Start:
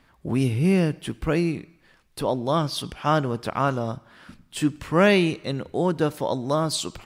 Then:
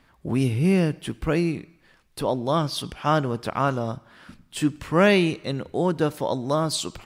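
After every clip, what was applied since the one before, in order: no audible change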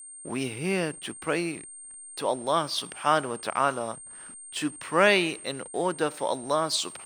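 frequency weighting A; hysteresis with a dead band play -44 dBFS; whistle 8.7 kHz -42 dBFS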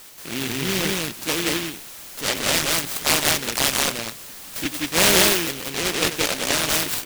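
on a send: loudspeakers at several distances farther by 32 m -11 dB, 62 m -1 dB; on the sum: crackling interface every 0.76 s, samples 512, repeat, from 0.83 s; delay time shaken by noise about 2.5 kHz, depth 0.37 ms; trim +2.5 dB

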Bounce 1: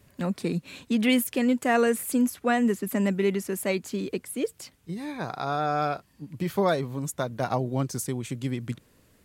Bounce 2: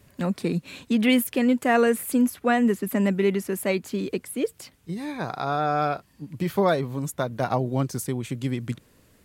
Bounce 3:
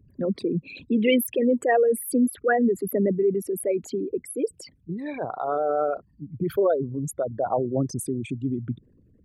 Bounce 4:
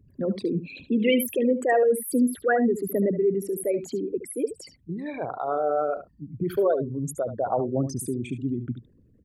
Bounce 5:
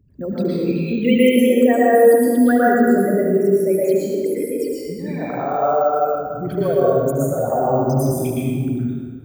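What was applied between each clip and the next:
dynamic bell 6.9 kHz, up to -5 dB, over -48 dBFS, Q 1; trim +2.5 dB
resonances exaggerated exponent 3
delay 73 ms -12 dB; trim -1 dB
plate-style reverb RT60 1.8 s, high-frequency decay 0.7×, pre-delay 100 ms, DRR -7.5 dB; careless resampling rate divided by 2×, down filtered, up hold

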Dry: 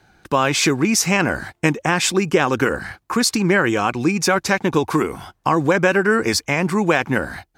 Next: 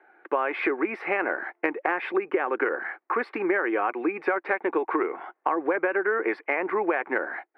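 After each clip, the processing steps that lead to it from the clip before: elliptic band-pass 350–2100 Hz, stop band 50 dB; band-stop 1 kHz, Q 20; compression, threshold -21 dBFS, peak gain reduction 10 dB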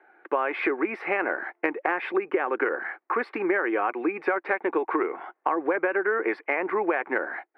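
no audible change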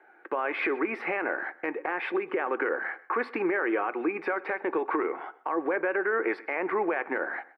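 peak limiter -18.5 dBFS, peak gain reduction 9.5 dB; feedback delay 128 ms, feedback 33%, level -22 dB; reverberation RT60 0.50 s, pre-delay 3 ms, DRR 15 dB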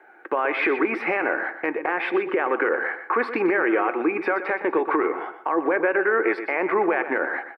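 feedback delay 122 ms, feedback 28%, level -11.5 dB; trim +6 dB

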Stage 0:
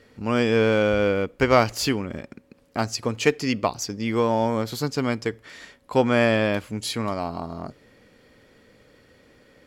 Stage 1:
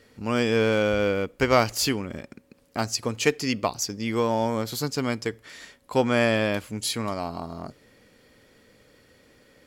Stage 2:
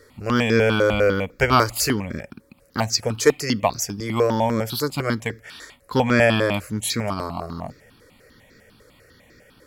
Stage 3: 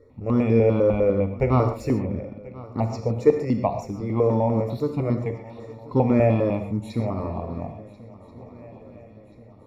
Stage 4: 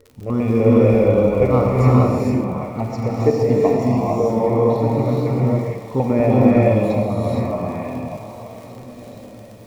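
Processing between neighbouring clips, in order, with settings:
treble shelf 5 kHz +8 dB; trim -2.5 dB
stepped phaser 10 Hz 740–3000 Hz; trim +7.5 dB
boxcar filter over 28 samples; shuffle delay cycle 1383 ms, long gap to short 3:1, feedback 50%, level -20.5 dB; gated-style reverb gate 160 ms flat, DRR 6 dB
repeats whose band climbs or falls 599 ms, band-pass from 760 Hz, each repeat 1.4 oct, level -6.5 dB; crackle 54 per s -33 dBFS; gated-style reverb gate 490 ms rising, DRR -4.5 dB

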